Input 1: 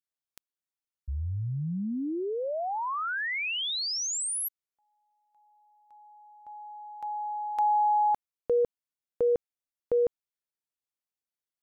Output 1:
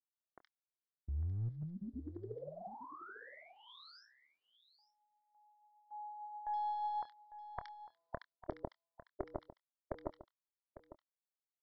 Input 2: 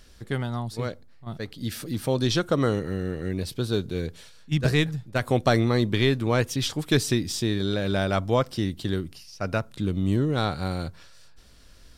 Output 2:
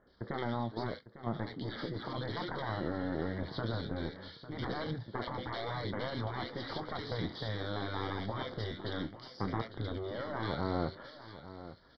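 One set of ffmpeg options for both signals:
ffmpeg -i in.wav -filter_complex "[0:a]highpass=frequency=730:poles=1,agate=range=-14dB:threshold=-55dB:ratio=3:release=53:detection=rms,afftfilt=real='re*lt(hypot(re,im),0.0631)':imag='im*lt(hypot(re,im),0.0631)':win_size=1024:overlap=0.75,acrossover=split=3600[link_01][link_02];[link_02]acompressor=threshold=-49dB:ratio=4:attack=1:release=60[link_03];[link_01][link_03]amix=inputs=2:normalize=0,tiltshelf=frequency=1500:gain=7,acompressor=threshold=-46dB:ratio=2:attack=49:release=79:knee=6:detection=peak,aresample=11025,aeval=exprs='clip(val(0),-1,0.00631)':channel_layout=same,aresample=44100,asplit=2[link_04][link_05];[link_05]adelay=26,volume=-14dB[link_06];[link_04][link_06]amix=inputs=2:normalize=0,acrossover=split=1900[link_07][link_08];[link_08]adelay=70[link_09];[link_07][link_09]amix=inputs=2:normalize=0,aphaser=in_gain=1:out_gain=1:delay=3.7:decay=0.21:speed=0.83:type=sinusoidal,asuperstop=centerf=2600:order=4:qfactor=2.5,asplit=2[link_10][link_11];[link_11]aecho=0:1:851:0.2[link_12];[link_10][link_12]amix=inputs=2:normalize=0,volume=6dB" out.wav

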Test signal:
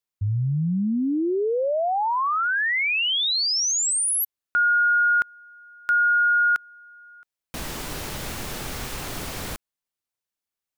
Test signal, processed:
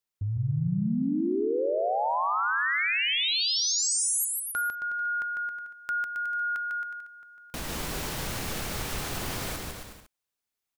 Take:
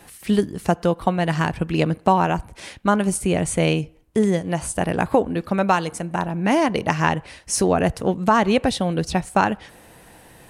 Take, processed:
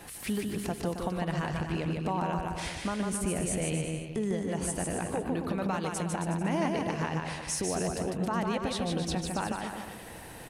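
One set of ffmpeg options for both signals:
ffmpeg -i in.wav -filter_complex "[0:a]acompressor=threshold=-27dB:ratio=6:attack=0.74:release=153:knee=6:detection=rms,asplit=2[link_01][link_02];[link_02]aecho=0:1:150|270|366|442.8|504.2:0.631|0.398|0.251|0.158|0.1[link_03];[link_01][link_03]amix=inputs=2:normalize=0" out.wav

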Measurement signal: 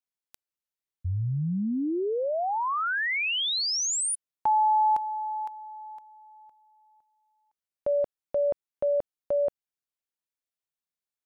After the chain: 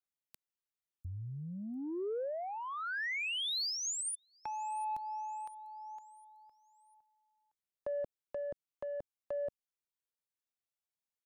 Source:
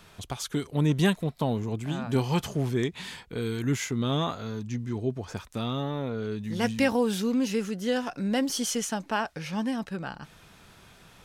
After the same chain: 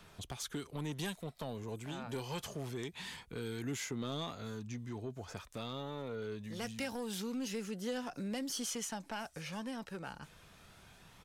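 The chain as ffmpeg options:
ffmpeg -i in.wav -filter_complex "[0:a]acrossover=split=310|3100[link_01][link_02][link_03];[link_01]acompressor=threshold=-40dB:ratio=2.5[link_04];[link_02]acompressor=threshold=-33dB:ratio=3[link_05];[link_03]acompressor=threshold=-33dB:ratio=2[link_06];[link_04][link_05][link_06]amix=inputs=3:normalize=0,acrossover=split=6900[link_07][link_08];[link_07]asoftclip=type=tanh:threshold=-25.5dB[link_09];[link_08]aecho=1:1:698|1396|2094|2792:0.15|0.0643|0.0277|0.0119[link_10];[link_09][link_10]amix=inputs=2:normalize=0,aphaser=in_gain=1:out_gain=1:delay=2.3:decay=0.21:speed=0.25:type=triangular,volume=-6dB" out.wav

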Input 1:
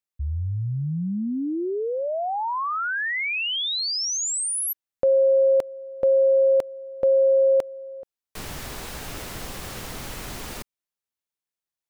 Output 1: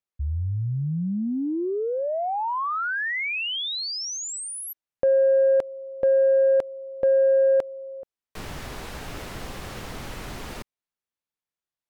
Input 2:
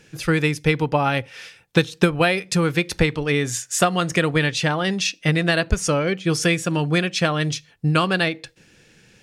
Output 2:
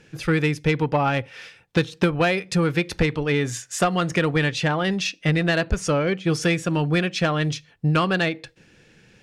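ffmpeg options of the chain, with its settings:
ffmpeg -i in.wav -af "aemphasis=mode=reproduction:type=cd,asoftclip=type=tanh:threshold=-11dB" out.wav

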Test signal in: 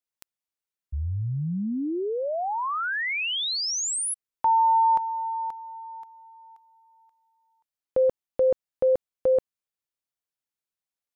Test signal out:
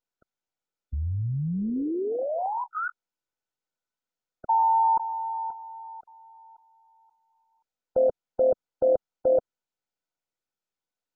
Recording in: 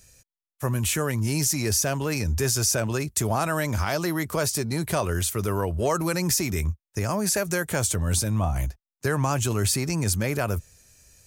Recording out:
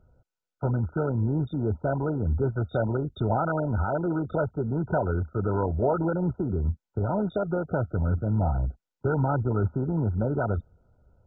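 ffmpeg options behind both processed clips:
ffmpeg -i in.wav -ar 16000 -c:a mp2 -b:a 8k out.mp2

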